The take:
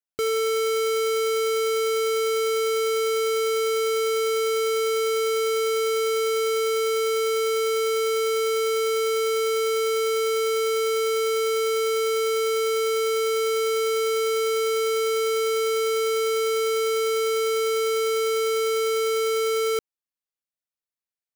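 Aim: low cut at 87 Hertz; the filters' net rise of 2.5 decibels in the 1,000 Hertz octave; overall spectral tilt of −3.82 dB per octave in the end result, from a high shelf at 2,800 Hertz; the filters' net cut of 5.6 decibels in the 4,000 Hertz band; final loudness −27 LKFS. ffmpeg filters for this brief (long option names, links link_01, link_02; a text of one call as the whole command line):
ffmpeg -i in.wav -af "highpass=87,equalizer=frequency=1000:width_type=o:gain=6.5,highshelf=frequency=2800:gain=-6,equalizer=frequency=4000:width_type=o:gain=-3,volume=-4dB" out.wav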